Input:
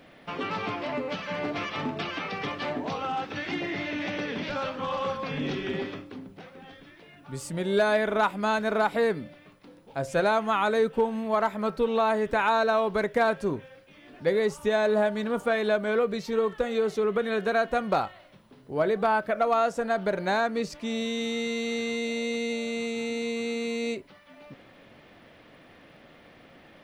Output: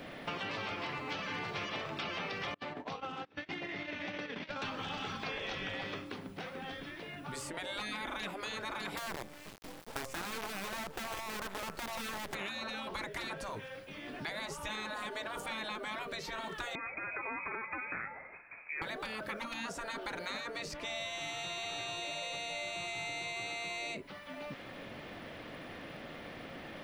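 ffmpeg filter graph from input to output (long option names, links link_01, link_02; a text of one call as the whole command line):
ffmpeg -i in.wav -filter_complex "[0:a]asettb=1/sr,asplit=3[link_01][link_02][link_03];[link_01]atrim=end=2.544[link_04];[link_02]atrim=start=2.54:end=4.62,asetpts=PTS-STARTPTS,afade=type=in:duration=0.004:curve=qsin,afade=type=out:start_time=2.076:duration=0.004:curve=qsin,agate=range=-33dB:threshold=-32dB:ratio=16:release=100:detection=peak,highshelf=frequency=5000:gain=-8.5,acompressor=threshold=-38dB:ratio=4:attack=3.2:release=140:knee=1:detection=peak[link_05];[link_03]atrim=start=4.616[link_06];[link_04][link_05]acrossfade=duration=0.004:curve1=hsin:curve2=qsin[link_07];[link_07][link_06]acrossfade=duration=0.004:curve1=qsin:curve2=hsin,asettb=1/sr,asplit=3[link_08][link_09][link_10];[link_08]atrim=end=8.974[link_11];[link_09]atrim=start=8.97:end=12.35,asetpts=PTS-STARTPTS,afade=type=in:duration=0.004:curve=qsin,afade=type=out:start_time=3.376:duration=0.004:curve=qsin,acompressor=threshold=-26dB:ratio=12:attack=3.2:release=140:knee=1:detection=peak,acrusher=bits=6:dc=4:mix=0:aa=0.000001[link_12];[link_10]atrim=start=12.346[link_13];[link_11][link_12]acrossfade=duration=0.004:curve1=hsin:curve2=qsin[link_14];[link_14][link_13]acrossfade=duration=0.004:curve1=qsin:curve2=hsin,asettb=1/sr,asplit=3[link_15][link_16][link_17];[link_15]atrim=end=16.754[link_18];[link_16]atrim=start=16.75:end=18.82,asetpts=PTS-STARTPTS,afade=type=in:duration=0.004:curve=qsin,afade=type=out:start_time=2.066:duration=0.004:curve=qsin,aemphasis=mode=production:type=riaa,acompressor=threshold=-32dB:ratio=2:attack=3.2:release=140:knee=1:detection=peak,lowpass=frequency=2300:width_type=q:width=0.5098,lowpass=frequency=2300:width_type=q:width=0.6013,lowpass=frequency=2300:width_type=q:width=0.9,lowpass=frequency=2300:width_type=q:width=2.563,afreqshift=-2700[link_19];[link_17]atrim=start=18.816[link_20];[link_18][link_19]acrossfade=duration=0.004:curve1=hsin:curve2=qsin[link_21];[link_21][link_20]acrossfade=duration=0.004:curve1=qsin:curve2=hsin,afftfilt=real='re*lt(hypot(re,im),0.1)':imag='im*lt(hypot(re,im),0.1)':win_size=1024:overlap=0.75,acrossover=split=800|2700[link_22][link_23][link_24];[link_22]acompressor=threshold=-50dB:ratio=4[link_25];[link_23]acompressor=threshold=-50dB:ratio=4[link_26];[link_24]acompressor=threshold=-53dB:ratio=4[link_27];[link_25][link_26][link_27]amix=inputs=3:normalize=0,volume=6.5dB" out.wav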